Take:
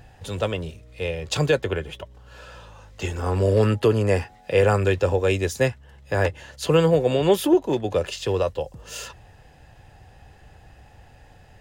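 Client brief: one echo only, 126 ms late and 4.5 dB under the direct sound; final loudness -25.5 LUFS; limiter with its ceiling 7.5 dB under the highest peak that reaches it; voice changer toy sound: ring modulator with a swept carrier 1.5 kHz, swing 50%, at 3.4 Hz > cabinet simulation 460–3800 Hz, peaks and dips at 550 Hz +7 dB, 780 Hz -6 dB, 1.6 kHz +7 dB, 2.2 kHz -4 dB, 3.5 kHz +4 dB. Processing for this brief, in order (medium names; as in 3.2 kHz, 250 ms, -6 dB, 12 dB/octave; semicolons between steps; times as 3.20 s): peak limiter -15 dBFS; delay 126 ms -4.5 dB; ring modulator with a swept carrier 1.5 kHz, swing 50%, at 3.4 Hz; cabinet simulation 460–3800 Hz, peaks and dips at 550 Hz +7 dB, 780 Hz -6 dB, 1.6 kHz +7 dB, 2.2 kHz -4 dB, 3.5 kHz +4 dB; trim -1 dB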